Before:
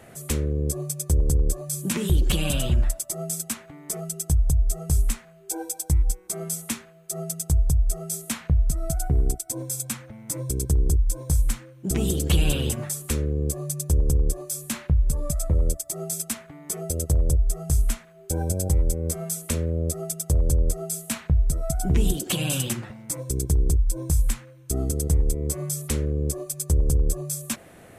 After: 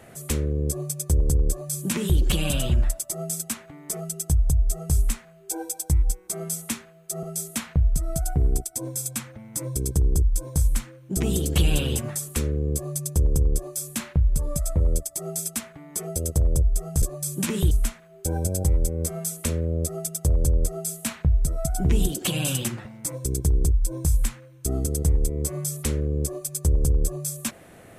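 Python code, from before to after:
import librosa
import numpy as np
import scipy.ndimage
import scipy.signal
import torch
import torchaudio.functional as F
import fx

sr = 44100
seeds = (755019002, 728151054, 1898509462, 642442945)

y = fx.edit(x, sr, fx.duplicate(start_s=1.49, length_s=0.69, to_s=17.76),
    fx.cut(start_s=7.23, length_s=0.74), tone=tone)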